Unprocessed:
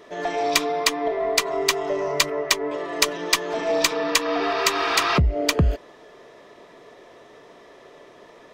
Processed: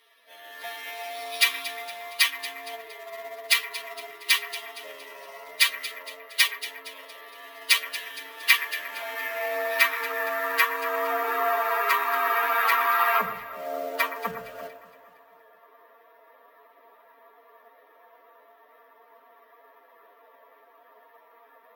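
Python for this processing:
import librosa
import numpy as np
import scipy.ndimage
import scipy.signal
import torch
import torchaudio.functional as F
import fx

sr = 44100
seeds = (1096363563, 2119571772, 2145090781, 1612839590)

p1 = fx.high_shelf(x, sr, hz=7000.0, db=-7.5)
p2 = fx.stretch_grains(p1, sr, factor=1.5, grain_ms=26.0)
p3 = fx.filter_sweep_bandpass(p2, sr, from_hz=3400.0, to_hz=1100.0, start_s=4.53, end_s=6.62, q=1.3)
p4 = fx.dynamic_eq(p3, sr, hz=1900.0, q=1.7, threshold_db=-43.0, ratio=4.0, max_db=6)
p5 = fx.quant_dither(p4, sr, seeds[0], bits=6, dither='none')
p6 = p4 + (p5 * librosa.db_to_amplitude(-11.0))
p7 = fx.stretch_vocoder(p6, sr, factor=1.7)
p8 = p7 + fx.echo_alternate(p7, sr, ms=116, hz=2000.0, feedback_pct=68, wet_db=-10.5, dry=0)
p9 = np.repeat(p8[::3], 3)[:len(p8)]
p10 = fx.highpass(p9, sr, hz=320.0, slope=6)
y = fx.hum_notches(p10, sr, base_hz=50, count=9)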